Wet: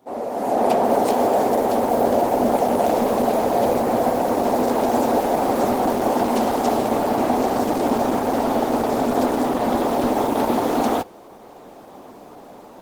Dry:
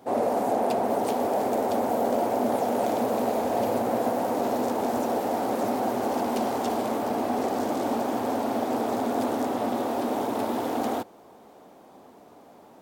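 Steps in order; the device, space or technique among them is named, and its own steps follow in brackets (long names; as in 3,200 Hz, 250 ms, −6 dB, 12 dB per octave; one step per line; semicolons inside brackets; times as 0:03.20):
video call (high-pass filter 110 Hz 6 dB per octave; automatic gain control gain up to 15 dB; level −4 dB; Opus 16 kbit/s 48,000 Hz)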